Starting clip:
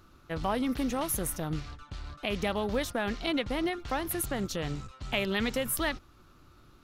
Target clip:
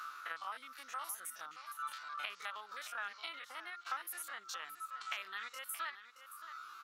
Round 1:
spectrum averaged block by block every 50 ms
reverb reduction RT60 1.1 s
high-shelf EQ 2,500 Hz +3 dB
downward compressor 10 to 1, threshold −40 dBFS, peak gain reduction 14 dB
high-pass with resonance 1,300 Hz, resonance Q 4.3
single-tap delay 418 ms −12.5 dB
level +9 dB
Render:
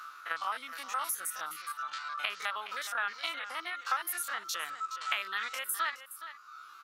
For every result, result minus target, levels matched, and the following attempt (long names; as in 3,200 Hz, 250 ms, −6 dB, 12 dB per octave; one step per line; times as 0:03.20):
downward compressor: peak gain reduction −9 dB; echo 205 ms early
spectrum averaged block by block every 50 ms
reverb reduction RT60 1.1 s
high-shelf EQ 2,500 Hz +3 dB
downward compressor 10 to 1, threshold −50 dBFS, peak gain reduction 23 dB
high-pass with resonance 1,300 Hz, resonance Q 4.3
single-tap delay 418 ms −12.5 dB
level +9 dB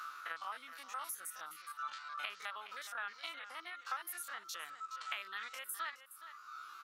echo 205 ms early
spectrum averaged block by block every 50 ms
reverb reduction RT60 1.1 s
high-shelf EQ 2,500 Hz +3 dB
downward compressor 10 to 1, threshold −50 dBFS, peak gain reduction 23 dB
high-pass with resonance 1,300 Hz, resonance Q 4.3
single-tap delay 623 ms −12.5 dB
level +9 dB